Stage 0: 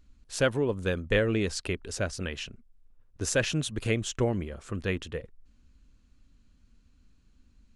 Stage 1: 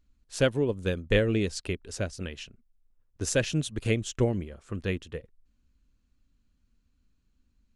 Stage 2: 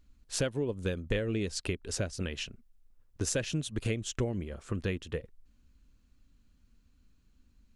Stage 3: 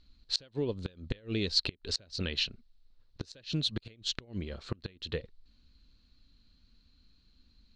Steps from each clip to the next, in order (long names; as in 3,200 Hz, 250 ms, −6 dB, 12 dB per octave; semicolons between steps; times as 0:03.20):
dynamic equaliser 1,200 Hz, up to −7 dB, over −43 dBFS, Q 0.76; expander for the loud parts 1.5 to 1, over −48 dBFS; level +4 dB
downward compressor 4 to 1, threshold −35 dBFS, peak gain reduction 14.5 dB; level +5 dB
gate with flip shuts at −21 dBFS, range −26 dB; low-pass with resonance 4,200 Hz, resonance Q 7.7